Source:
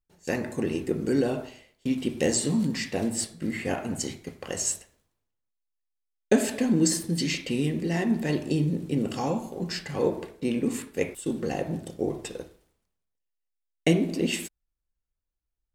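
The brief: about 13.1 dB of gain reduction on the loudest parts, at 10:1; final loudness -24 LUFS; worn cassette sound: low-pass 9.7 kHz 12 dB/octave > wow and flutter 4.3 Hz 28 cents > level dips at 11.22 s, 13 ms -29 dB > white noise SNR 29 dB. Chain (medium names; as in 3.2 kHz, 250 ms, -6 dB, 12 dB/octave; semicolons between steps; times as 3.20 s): compression 10:1, threshold -29 dBFS; low-pass 9.7 kHz 12 dB/octave; wow and flutter 4.3 Hz 28 cents; level dips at 11.22 s, 13 ms -29 dB; white noise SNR 29 dB; trim +11 dB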